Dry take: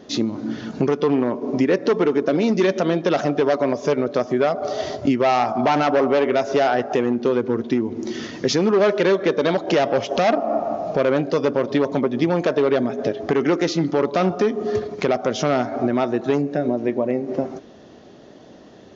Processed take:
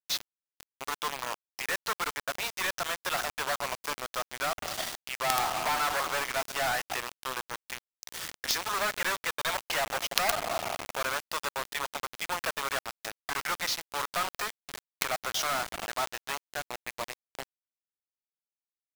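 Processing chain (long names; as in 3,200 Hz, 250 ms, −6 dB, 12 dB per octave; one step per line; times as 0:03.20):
high-pass filter 910 Hz 24 dB per octave
harmonic generator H 3 −14 dB, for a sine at −10.5 dBFS
log-companded quantiser 2 bits
level −1 dB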